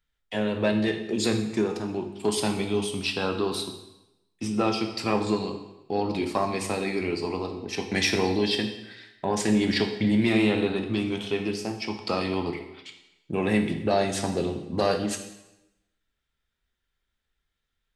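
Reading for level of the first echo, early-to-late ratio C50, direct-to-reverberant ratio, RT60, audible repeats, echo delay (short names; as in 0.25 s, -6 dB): none, 8.0 dB, 5.0 dB, 0.90 s, none, none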